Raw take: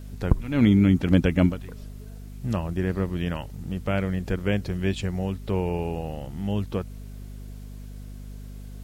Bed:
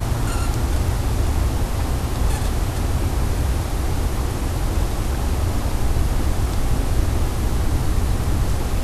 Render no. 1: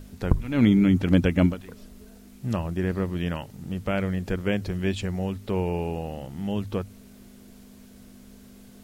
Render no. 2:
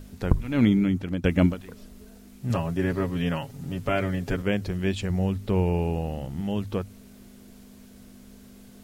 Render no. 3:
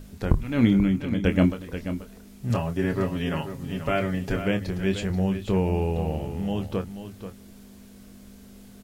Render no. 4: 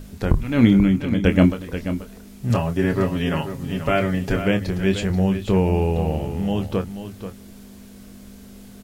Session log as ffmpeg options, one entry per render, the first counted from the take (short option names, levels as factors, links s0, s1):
-af "bandreject=f=50:t=h:w=6,bandreject=f=100:t=h:w=6,bandreject=f=150:t=h:w=6"
-filter_complex "[0:a]asettb=1/sr,asplit=3[s0][s1][s2];[s0]atrim=end=2.494[s3];[s1]atrim=start=2.49:end=4.42,asetpts=PTS-STARTPTS,afade=t=in:d=0.004:c=qsin,afade=t=out:st=1.926:d=0.004:c=qsin,aecho=1:1:7.3:0.86,atrim=end_sample=85113[s4];[s2]atrim=start=4.416[s5];[s3][s4]acrossfade=d=0.004:c1=hsin:c2=qsin[s6];[s6][s5]acrossfade=d=0.004:c1=qsin:c2=hsin,asettb=1/sr,asplit=3[s7][s8][s9];[s7]atrim=end=5.104[s10];[s8]atrim=start=5.1:end=6.41,asetpts=PTS-STARTPTS,afade=t=in:d=0.004:c=qsin,afade=t=out:st=1.306:d=0.004:c=qsin,lowshelf=f=170:g=7.5[s11];[s9]atrim=start=6.406[s12];[s10][s11]acrossfade=d=0.004:c1=hsin:c2=qsin[s13];[s13][s12]acrossfade=d=0.004:c1=qsin:c2=hsin,asplit=2[s14][s15];[s14]atrim=end=1.24,asetpts=PTS-STARTPTS,afade=t=out:st=0.55:d=0.69:silence=0.199526[s16];[s15]atrim=start=1.24,asetpts=PTS-STARTPTS,afade=t=in:d=0.004:c=hsin:silence=0.199526[s17];[s16][s17]concat=n=2:v=0:a=1"
-filter_complex "[0:a]asplit=2[s0][s1];[s1]adelay=26,volume=0.355[s2];[s0][s2]amix=inputs=2:normalize=0,aecho=1:1:484:0.299"
-af "volume=1.78,alimiter=limit=0.794:level=0:latency=1"